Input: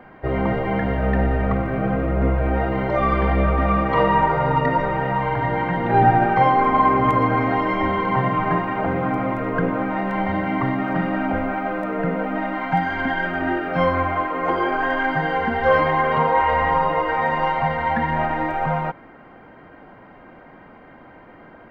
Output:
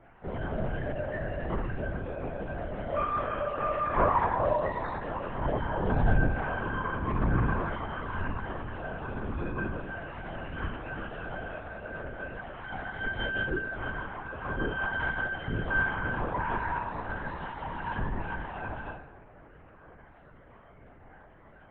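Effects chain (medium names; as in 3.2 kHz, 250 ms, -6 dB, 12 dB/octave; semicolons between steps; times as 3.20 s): feedback comb 120 Hz, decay 0.77 s, harmonics all, mix 100%; LPC vocoder at 8 kHz whisper; trim +6 dB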